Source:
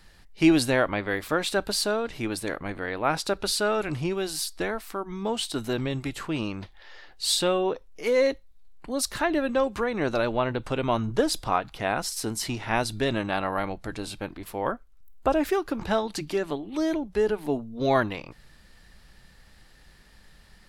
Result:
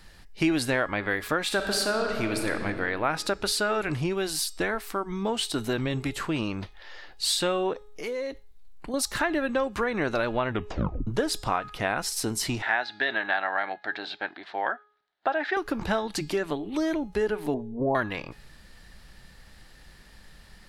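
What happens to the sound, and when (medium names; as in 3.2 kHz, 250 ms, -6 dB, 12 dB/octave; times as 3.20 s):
1.43–2.50 s: reverb throw, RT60 2.4 s, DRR 4 dB
7.73–8.94 s: compression 4:1, threshold -34 dBFS
10.49 s: tape stop 0.58 s
12.62–15.57 s: cabinet simulation 490–4000 Hz, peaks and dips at 500 Hz -7 dB, 740 Hz +6 dB, 1.1 kHz -6 dB, 1.7 kHz +8 dB, 2.6 kHz -4 dB, 3.9 kHz +5 dB
17.54–17.95 s: elliptic low-pass 1 kHz
whole clip: de-hum 417.9 Hz, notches 20; dynamic bell 1.7 kHz, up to +5 dB, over -39 dBFS, Q 1.3; compression 2.5:1, threshold -28 dBFS; trim +3 dB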